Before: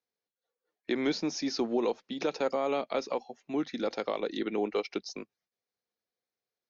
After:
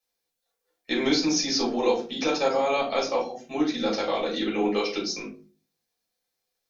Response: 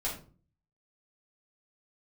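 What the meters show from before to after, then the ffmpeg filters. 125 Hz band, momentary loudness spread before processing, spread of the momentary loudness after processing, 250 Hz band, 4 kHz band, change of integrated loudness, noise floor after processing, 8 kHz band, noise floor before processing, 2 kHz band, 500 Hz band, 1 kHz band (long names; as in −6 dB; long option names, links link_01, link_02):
+6.0 dB, 8 LU, 7 LU, +6.0 dB, +11.0 dB, +6.5 dB, −82 dBFS, can't be measured, below −85 dBFS, +8.5 dB, +5.5 dB, +8.0 dB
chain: -filter_complex "[0:a]highshelf=frequency=2900:gain=11[link_01];[1:a]atrim=start_sample=2205,asetrate=48510,aresample=44100[link_02];[link_01][link_02]afir=irnorm=-1:irlink=0,volume=1.5dB"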